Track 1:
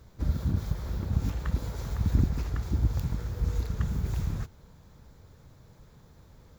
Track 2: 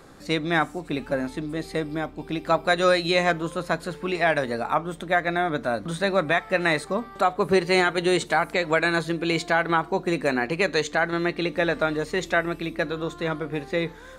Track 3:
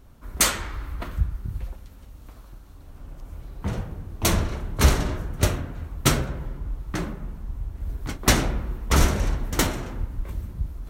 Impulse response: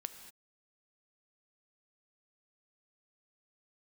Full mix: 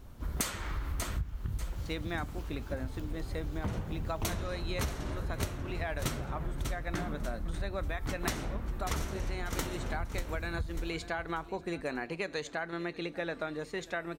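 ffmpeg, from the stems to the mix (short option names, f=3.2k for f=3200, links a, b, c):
-filter_complex "[0:a]equalizer=f=3k:w=4.8:g=10.5,volume=-11.5dB[a];[1:a]adelay=1600,volume=-11dB,asplit=2[b][c];[c]volume=-22dB[d];[2:a]volume=0dB,asplit=2[e][f];[f]volume=-15.5dB[g];[d][g]amix=inputs=2:normalize=0,aecho=0:1:590|1180|1770|2360:1|0.31|0.0961|0.0298[h];[a][b][e][h]amix=inputs=4:normalize=0,acompressor=threshold=-30dB:ratio=20"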